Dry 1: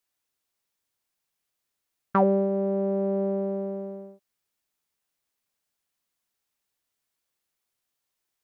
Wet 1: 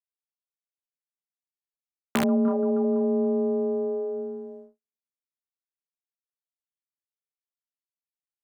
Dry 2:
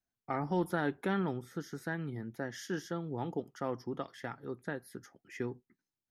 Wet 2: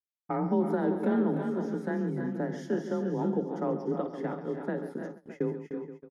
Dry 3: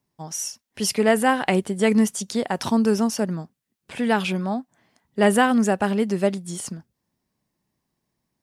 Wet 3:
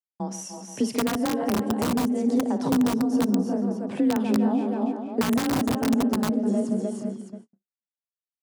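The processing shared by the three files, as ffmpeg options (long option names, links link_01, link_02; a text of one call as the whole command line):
ffmpeg -i in.wav -filter_complex "[0:a]aeval=exprs='0.531*(cos(1*acos(clip(val(0)/0.531,-1,1)))-cos(1*PI/2))+0.0168*(cos(5*acos(clip(val(0)/0.531,-1,1)))-cos(5*PI/2))':channel_layout=same,lowpass=frequency=11000:width=0.5412,lowpass=frequency=11000:width=1.3066,asplit=2[link_01][link_02];[link_02]aecho=0:1:55|137|300|329|359|614:0.224|0.266|0.282|0.376|0.2|0.158[link_03];[link_01][link_03]amix=inputs=2:normalize=0,afreqshift=30,asplit=2[link_04][link_05];[link_05]adelay=478.1,volume=-15dB,highshelf=frequency=4000:gain=-10.8[link_06];[link_04][link_06]amix=inputs=2:normalize=0,asplit=2[link_07][link_08];[link_08]acompressor=threshold=-26dB:ratio=12,volume=2dB[link_09];[link_07][link_09]amix=inputs=2:normalize=0,tiltshelf=frequency=1200:gain=8.5,aeval=exprs='(mod(1.26*val(0)+1,2)-1)/1.26':channel_layout=same,acrossover=split=270[link_10][link_11];[link_11]acompressor=threshold=-17dB:ratio=6[link_12];[link_10][link_12]amix=inputs=2:normalize=0,highpass=140,adynamicequalizer=threshold=0.0141:dfrequency=2200:dqfactor=0.95:tfrequency=2200:tqfactor=0.95:attack=5:release=100:ratio=0.375:range=3.5:mode=cutabove:tftype=bell,agate=range=-55dB:threshold=-34dB:ratio=16:detection=peak,volume=-8dB" out.wav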